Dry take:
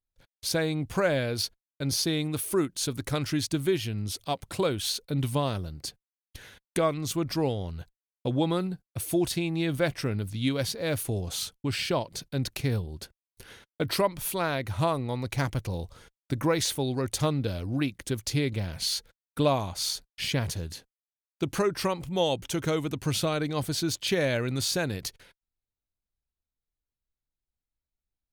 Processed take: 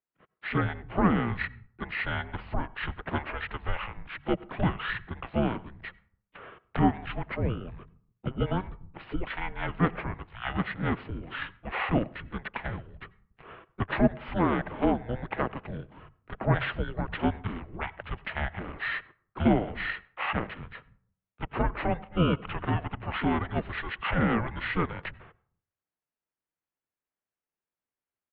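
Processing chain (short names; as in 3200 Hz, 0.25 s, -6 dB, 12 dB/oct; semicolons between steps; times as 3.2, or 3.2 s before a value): low shelf 250 Hz -6.5 dB; harmoniser -12 st -2 dB, +3 st -12 dB; air absorption 410 m; bands offset in time highs, lows 0.29 s, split 270 Hz; on a send at -21.5 dB: reverb RT60 0.55 s, pre-delay 85 ms; on the sum: mistuned SSB -360 Hz 410–3400 Hz; gain +5.5 dB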